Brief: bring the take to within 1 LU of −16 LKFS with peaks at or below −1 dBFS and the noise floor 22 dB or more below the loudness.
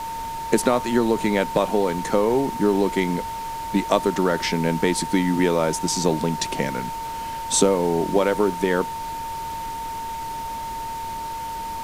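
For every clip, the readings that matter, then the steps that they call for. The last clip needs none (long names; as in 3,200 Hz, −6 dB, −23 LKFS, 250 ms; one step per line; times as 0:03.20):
interfering tone 910 Hz; level of the tone −28 dBFS; background noise floor −31 dBFS; target noise floor −45 dBFS; integrated loudness −23.0 LKFS; sample peak −4.0 dBFS; target loudness −16.0 LKFS
→ notch filter 910 Hz, Q 30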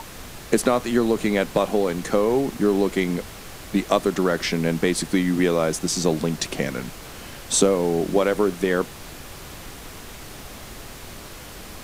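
interfering tone none found; background noise floor −40 dBFS; target noise floor −45 dBFS
→ noise reduction from a noise print 6 dB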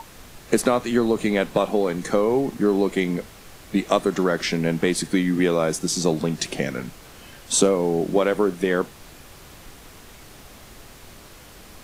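background noise floor −46 dBFS; integrated loudness −22.5 LKFS; sample peak −3.5 dBFS; target loudness −16.0 LKFS
→ level +6.5 dB
brickwall limiter −1 dBFS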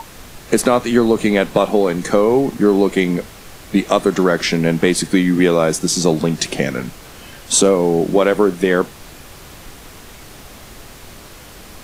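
integrated loudness −16.0 LKFS; sample peak −1.0 dBFS; background noise floor −39 dBFS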